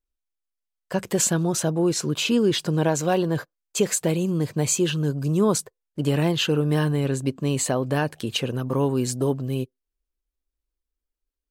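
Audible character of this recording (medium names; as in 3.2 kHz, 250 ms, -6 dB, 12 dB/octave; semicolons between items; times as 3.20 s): noise floor -86 dBFS; spectral tilt -5.0 dB/octave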